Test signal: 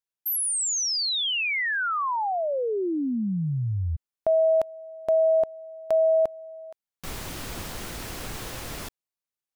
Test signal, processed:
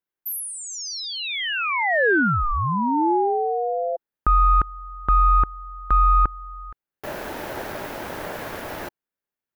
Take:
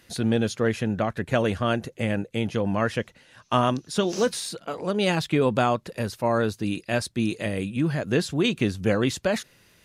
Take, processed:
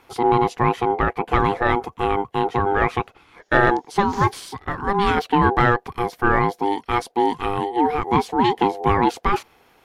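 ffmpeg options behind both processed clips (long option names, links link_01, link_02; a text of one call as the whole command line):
ffmpeg -i in.wav -af "equalizer=frequency=250:width_type=o:width=1:gain=6,equalizer=frequency=1000:width_type=o:width=1:gain=8,equalizer=frequency=4000:width_type=o:width=1:gain=-4,equalizer=frequency=8000:width_type=o:width=1:gain=-9,aeval=exprs='val(0)*sin(2*PI*600*n/s)':channel_layout=same,acontrast=32,volume=-1dB" out.wav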